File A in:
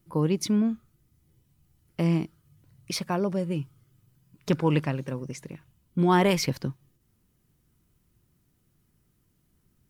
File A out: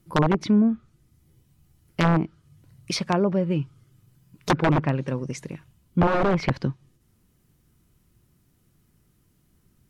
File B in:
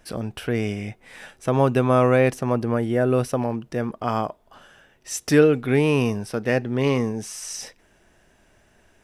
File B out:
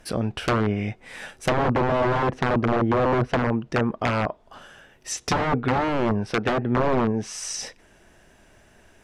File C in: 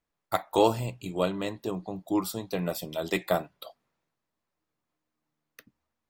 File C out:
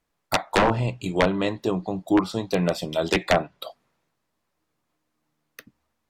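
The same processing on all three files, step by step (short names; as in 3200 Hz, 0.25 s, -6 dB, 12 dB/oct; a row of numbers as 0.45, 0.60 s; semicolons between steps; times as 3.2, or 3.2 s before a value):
wrapped overs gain 16.5 dB; treble ducked by the level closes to 1100 Hz, closed at -19.5 dBFS; match loudness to -24 LUFS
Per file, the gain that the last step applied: +5.0, +4.0, +8.0 dB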